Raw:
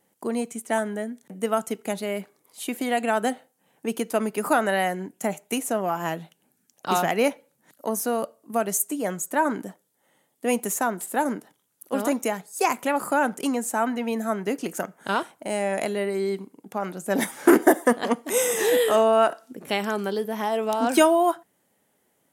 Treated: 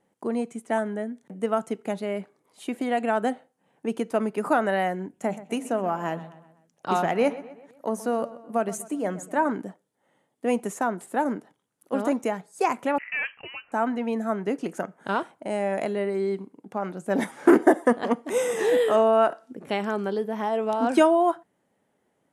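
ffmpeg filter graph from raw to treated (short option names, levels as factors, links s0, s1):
-filter_complex "[0:a]asettb=1/sr,asplit=3[s0][s1][s2];[s0]atrim=end=5.104[s3];[s1]atrim=start=5.1:end=9.5,asetpts=PTS-STARTPTS,afade=t=in:d=0.004:c=qsin,afade=t=out:st=4.396:d=0.004:c=qsin,bandreject=f=52.38:t=h:w=4,bandreject=f=104.76:t=h:w=4,bandreject=f=157.14:t=h:w=4,bandreject=f=209.52:t=h:w=4,bandreject=f=261.9:t=h:w=4,asplit=2[s4][s5];[s5]adelay=126,lowpass=f=4400:p=1,volume=0.158,asplit=2[s6][s7];[s7]adelay=126,lowpass=f=4400:p=1,volume=0.49,asplit=2[s8][s9];[s9]adelay=126,lowpass=f=4400:p=1,volume=0.49,asplit=2[s10][s11];[s11]adelay=126,lowpass=f=4400:p=1,volume=0.49[s12];[s4][s6][s8][s10][s12]amix=inputs=5:normalize=0,atrim=end_sample=194040[s13];[s2]atrim=start=9.496[s14];[s3][s13]acrossfade=d=0.004:c1=hsin:c2=qsin[s15];[s15][s14]acrossfade=d=0.004:c1=qsin:c2=hsin,asettb=1/sr,asplit=3[s16][s17][s18];[s16]atrim=end=12.984[s19];[s17]atrim=start=12.98:end=13.72,asetpts=PTS-STARTPTS,afade=t=in:d=0.004:c=qsin,afade=t=out:st=0.736:d=0.004:c=qsin,highpass=630,volume=8.41,asoftclip=hard,volume=0.119,lowpass=f=2700:t=q:w=0.5098,lowpass=f=2700:t=q:w=0.6013,lowpass=f=2700:t=q:w=0.9,lowpass=f=2700:t=q:w=2.563,afreqshift=-3200[s20];[s18]atrim=start=13.716[s21];[s19][s20]acrossfade=d=0.004:c1=hsin:c2=qsin[s22];[s22][s21]acrossfade=d=0.004:c1=qsin:c2=hsin,lowpass=f=11000:w=0.5412,lowpass=f=11000:w=1.3066,highshelf=f=2900:g=-12"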